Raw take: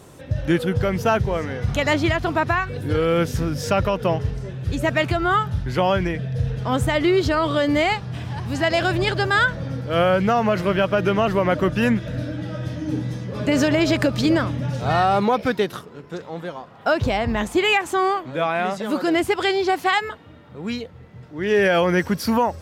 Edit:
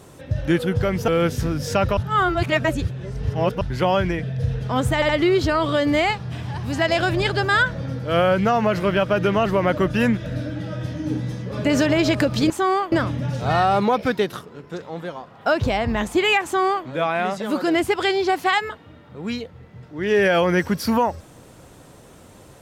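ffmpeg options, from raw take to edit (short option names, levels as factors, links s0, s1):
-filter_complex "[0:a]asplit=8[s0][s1][s2][s3][s4][s5][s6][s7];[s0]atrim=end=1.082[s8];[s1]atrim=start=3.038:end=3.932[s9];[s2]atrim=start=3.928:end=5.572,asetpts=PTS-STARTPTS,areverse[s10];[s3]atrim=start=5.568:end=6.982[s11];[s4]atrim=start=6.908:end=6.982[s12];[s5]atrim=start=6.908:end=14.322[s13];[s6]atrim=start=17.838:end=18.262[s14];[s7]atrim=start=14.318[s15];[s8][s9]acrossfade=d=0.004:c1=hsin:c2=hsin[s16];[s16][s10]acrossfade=d=0.004:c1=hsin:c2=hsin[s17];[s17][s11]acrossfade=d=0.004:c1=hsin:c2=hsin[s18];[s18][s12]acrossfade=d=0.004:c1=hsin:c2=hsin[s19];[s19][s13]acrossfade=d=0.004:c1=hsin:c2=hsin[s20];[s20][s14]acrossfade=d=0.004:c1=hsin:c2=hsin[s21];[s21][s15]acrossfade=d=0.004:c1=hsin:c2=hsin"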